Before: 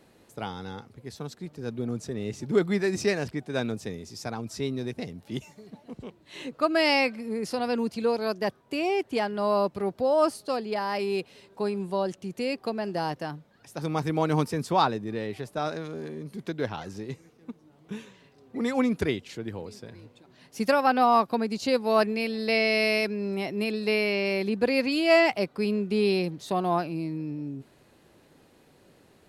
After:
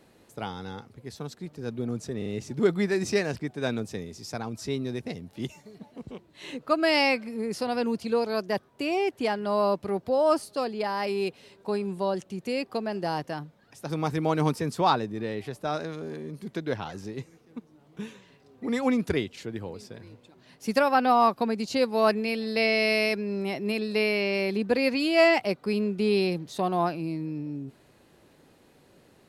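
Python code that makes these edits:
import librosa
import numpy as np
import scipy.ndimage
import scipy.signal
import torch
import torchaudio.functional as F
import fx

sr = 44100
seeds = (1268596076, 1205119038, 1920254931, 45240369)

y = fx.edit(x, sr, fx.stutter(start_s=2.18, slice_s=0.04, count=3), tone=tone)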